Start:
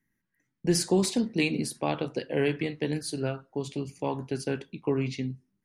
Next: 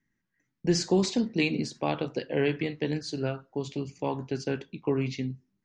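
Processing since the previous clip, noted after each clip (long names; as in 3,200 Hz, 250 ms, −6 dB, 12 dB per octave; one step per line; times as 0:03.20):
Butterworth low-pass 7,200 Hz 48 dB per octave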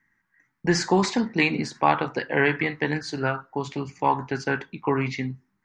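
flat-topped bell 1,300 Hz +12.5 dB
level +2.5 dB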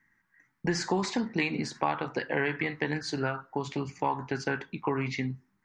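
downward compressor 2.5 to 1, threshold −28 dBFS, peak gain reduction 10 dB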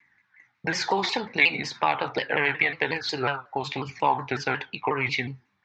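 loudspeaker in its box 100–5,800 Hz, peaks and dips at 160 Hz −9 dB, 230 Hz −8 dB, 330 Hz −8 dB, 810 Hz +4 dB, 2,400 Hz +8 dB, 3,700 Hz +8 dB
phase shifter 0.48 Hz, delay 2.6 ms, feedback 25%
pitch modulation by a square or saw wave saw down 5.5 Hz, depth 160 cents
level +4.5 dB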